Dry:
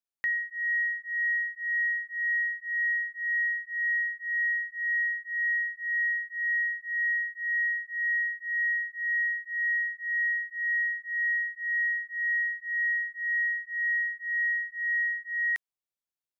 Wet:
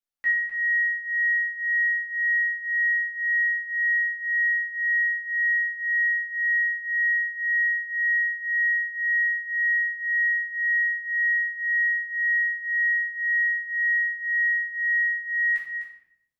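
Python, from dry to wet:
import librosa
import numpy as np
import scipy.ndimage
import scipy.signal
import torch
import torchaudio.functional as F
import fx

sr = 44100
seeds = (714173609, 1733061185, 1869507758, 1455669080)

y = x + 10.0 ** (-9.0 / 20.0) * np.pad(x, (int(254 * sr / 1000.0), 0))[:len(x)]
y = fx.room_shoebox(y, sr, seeds[0], volume_m3=180.0, walls='mixed', distance_m=2.3)
y = y * librosa.db_to_amplitude(-6.5)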